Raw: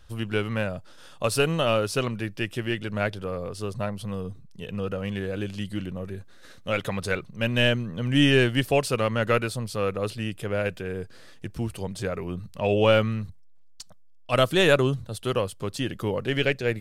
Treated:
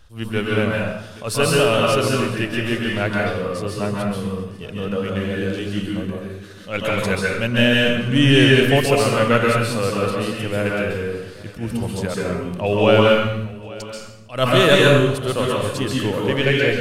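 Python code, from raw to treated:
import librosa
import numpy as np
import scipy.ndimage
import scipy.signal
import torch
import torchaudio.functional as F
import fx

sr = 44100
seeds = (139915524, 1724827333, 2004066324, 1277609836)

p1 = x + fx.echo_feedback(x, sr, ms=832, feedback_pct=37, wet_db=-20.0, dry=0)
p2 = fx.rev_plate(p1, sr, seeds[0], rt60_s=0.78, hf_ratio=0.95, predelay_ms=120, drr_db=-3.0)
p3 = fx.attack_slew(p2, sr, db_per_s=190.0)
y = F.gain(torch.from_numpy(p3), 3.0).numpy()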